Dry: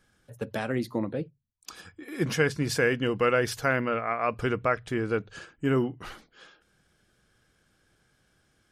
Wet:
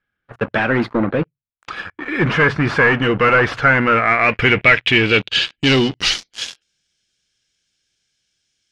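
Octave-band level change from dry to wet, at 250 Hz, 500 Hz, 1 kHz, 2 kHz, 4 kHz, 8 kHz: +10.5, +8.5, +12.5, +16.5, +20.0, +7.5 dB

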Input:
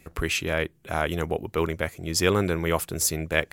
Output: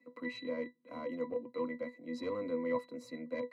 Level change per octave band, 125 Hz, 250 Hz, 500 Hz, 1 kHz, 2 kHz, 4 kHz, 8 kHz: -27.5 dB, -9.5 dB, -10.0 dB, -15.0 dB, -18.5 dB, -22.5 dB, under -35 dB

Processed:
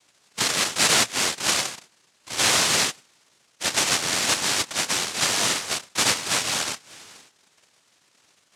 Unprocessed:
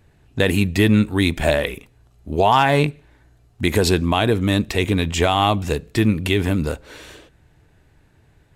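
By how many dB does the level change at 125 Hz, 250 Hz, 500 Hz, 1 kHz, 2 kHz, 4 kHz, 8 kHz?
-19.5, -16.5, -12.5, -7.5, -0.5, +4.5, +13.5 dB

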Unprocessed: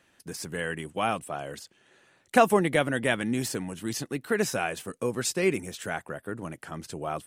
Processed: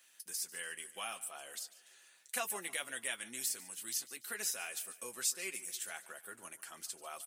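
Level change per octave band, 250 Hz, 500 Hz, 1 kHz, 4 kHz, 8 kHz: -27.5, -22.5, -18.5, -6.0, -0.5 dB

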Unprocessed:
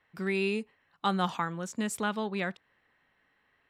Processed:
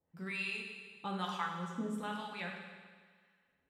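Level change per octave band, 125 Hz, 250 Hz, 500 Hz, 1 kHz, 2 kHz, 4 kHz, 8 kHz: -8.5, -8.5, -13.0, -7.0, -5.0, -5.5, -15.5 dB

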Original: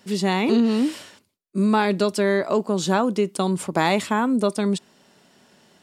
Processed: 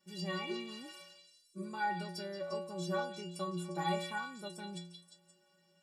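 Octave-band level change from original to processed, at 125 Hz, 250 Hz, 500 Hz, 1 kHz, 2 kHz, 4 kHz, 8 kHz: -15.5, -22.0, -18.5, -14.0, -14.0, -13.0, -17.0 dB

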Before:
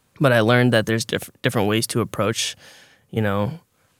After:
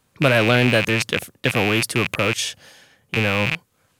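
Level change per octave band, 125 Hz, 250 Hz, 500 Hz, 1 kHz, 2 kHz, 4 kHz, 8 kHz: -0.5, -1.0, -1.0, -0.5, +4.0, +2.5, -0.5 dB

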